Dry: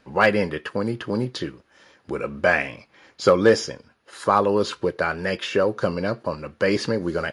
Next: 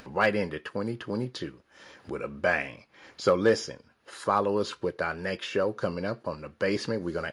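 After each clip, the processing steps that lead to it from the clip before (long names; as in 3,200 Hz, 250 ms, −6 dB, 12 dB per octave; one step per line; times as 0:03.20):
upward compression, threshold −32 dBFS
level −6.5 dB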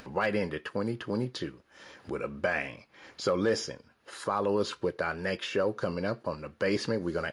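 brickwall limiter −18 dBFS, peak gain reduction 6 dB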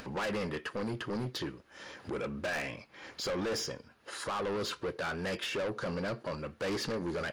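soft clipping −34 dBFS, distortion −5 dB
level +3 dB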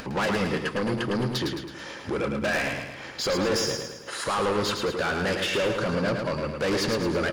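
repeating echo 108 ms, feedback 50%, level −5 dB
level +8 dB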